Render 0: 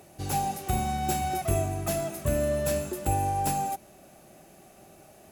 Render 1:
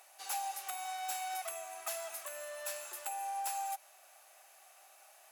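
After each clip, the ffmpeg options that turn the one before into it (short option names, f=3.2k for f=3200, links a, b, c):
-af "acompressor=threshold=-28dB:ratio=6,highpass=f=820:w=0.5412,highpass=f=820:w=1.3066,volume=-2dB"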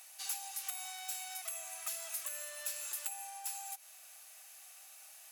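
-af "acompressor=threshold=-42dB:ratio=5,tiltshelf=f=1.4k:g=-9.5,volume=-1.5dB"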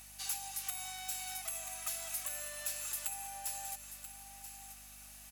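-af "aeval=exprs='val(0)+0.000794*(sin(2*PI*50*n/s)+sin(2*PI*2*50*n/s)/2+sin(2*PI*3*50*n/s)/3+sin(2*PI*4*50*n/s)/4+sin(2*PI*5*50*n/s)/5)':c=same,aecho=1:1:984:0.282,volume=1dB"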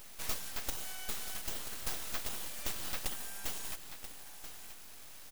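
-af "aeval=exprs='abs(val(0))':c=same,volume=4dB"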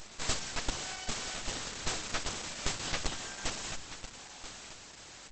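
-af "volume=8.5dB" -ar 48000 -c:a libopus -b:a 12k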